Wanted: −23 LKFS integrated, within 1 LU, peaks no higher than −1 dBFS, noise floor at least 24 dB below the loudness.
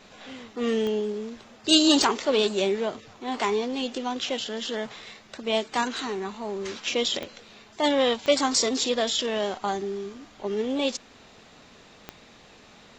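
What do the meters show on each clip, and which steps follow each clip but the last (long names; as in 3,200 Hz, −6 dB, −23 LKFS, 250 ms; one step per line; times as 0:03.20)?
number of clicks 5; integrated loudness −26.0 LKFS; sample peak −5.5 dBFS; target loudness −23.0 LKFS
→ click removal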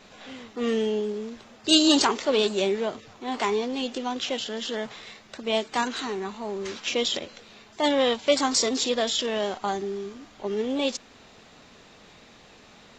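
number of clicks 0; integrated loudness −26.0 LKFS; sample peak −5.5 dBFS; target loudness −23.0 LKFS
→ level +3 dB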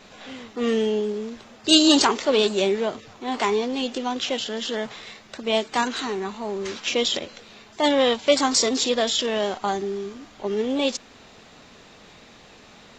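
integrated loudness −23.0 LKFS; sample peak −2.5 dBFS; background noise floor −49 dBFS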